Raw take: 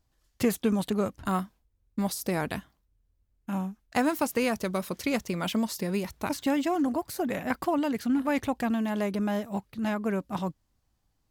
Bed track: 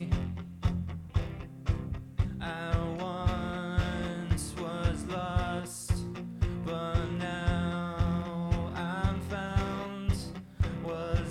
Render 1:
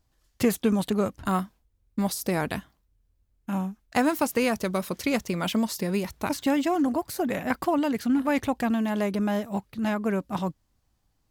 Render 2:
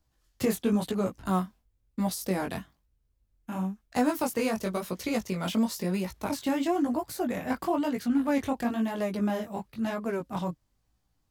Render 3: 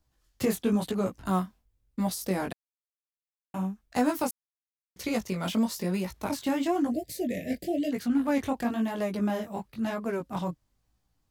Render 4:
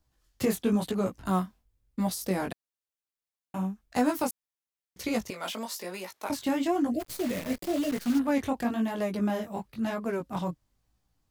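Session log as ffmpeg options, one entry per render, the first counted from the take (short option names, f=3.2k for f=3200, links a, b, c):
-af "volume=2.5dB"
-filter_complex "[0:a]flanger=delay=16:depth=6.9:speed=1,acrossover=split=210|1200|3400[a][b][c][d];[c]asoftclip=type=tanh:threshold=-38.5dB[e];[a][b][e][d]amix=inputs=4:normalize=0"
-filter_complex "[0:a]asplit=3[a][b][c];[a]afade=t=out:st=6.9:d=0.02[d];[b]asuperstop=centerf=1100:order=12:qfactor=0.95,afade=t=in:st=6.9:d=0.02,afade=t=out:st=7.91:d=0.02[e];[c]afade=t=in:st=7.91:d=0.02[f];[d][e][f]amix=inputs=3:normalize=0,asplit=5[g][h][i][j][k];[g]atrim=end=2.53,asetpts=PTS-STARTPTS,afade=t=out:st=2.526:d=0.004:c=hsin[l];[h]atrim=start=2.53:end=3.54,asetpts=PTS-STARTPTS,volume=0[m];[i]atrim=start=3.54:end=4.31,asetpts=PTS-STARTPTS,afade=t=in:d=0.004:c=hsin,afade=t=out:st=0.766:d=0.004:c=hsin[n];[j]atrim=start=4.31:end=4.96,asetpts=PTS-STARTPTS,volume=0[o];[k]atrim=start=4.96,asetpts=PTS-STARTPTS,afade=t=in:d=0.004:c=hsin[p];[l][m][n][o][p]concat=n=5:v=0:a=1"
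-filter_complex "[0:a]asettb=1/sr,asplit=3[a][b][c];[a]atrim=end=5.304[d];[b]atrim=start=5.3:end=6.3,asetpts=PTS-STARTPTS,afade=t=in:d=0.004:c=qsin,afade=t=out:st=0.996:d=0.004:c=qsin,highpass=510[e];[c]atrim=start=6.296[f];[d][e]acrossfade=d=0.004:c1=hsin:c2=qsin[g];[g][f]acrossfade=d=0.004:c1=qsin:c2=hsin,asplit=3[h][i][j];[h]afade=t=out:st=6.99:d=0.02[k];[i]acrusher=bits=7:dc=4:mix=0:aa=0.000001,afade=t=in:st=6.99:d=0.02,afade=t=out:st=8.18:d=0.02[l];[j]afade=t=in:st=8.18:d=0.02[m];[k][l][m]amix=inputs=3:normalize=0"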